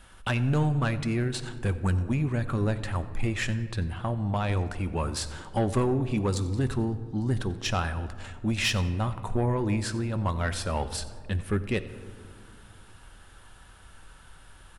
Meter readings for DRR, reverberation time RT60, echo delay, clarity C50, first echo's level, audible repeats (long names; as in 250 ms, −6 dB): 10.5 dB, 2.1 s, 91 ms, 13.0 dB, −21.0 dB, 1